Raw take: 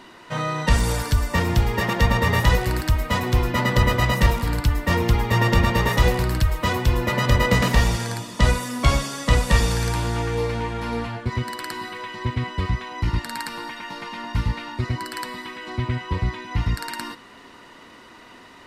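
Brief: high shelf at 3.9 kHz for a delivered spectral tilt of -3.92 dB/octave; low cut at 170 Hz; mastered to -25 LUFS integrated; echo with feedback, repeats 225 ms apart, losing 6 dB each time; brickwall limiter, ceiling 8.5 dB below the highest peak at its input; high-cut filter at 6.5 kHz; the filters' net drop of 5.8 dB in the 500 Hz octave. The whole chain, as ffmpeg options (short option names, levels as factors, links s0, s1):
-af "highpass=170,lowpass=6500,equalizer=f=500:t=o:g=-7,highshelf=f=3900:g=4.5,alimiter=limit=0.158:level=0:latency=1,aecho=1:1:225|450|675|900|1125|1350:0.501|0.251|0.125|0.0626|0.0313|0.0157,volume=1.26"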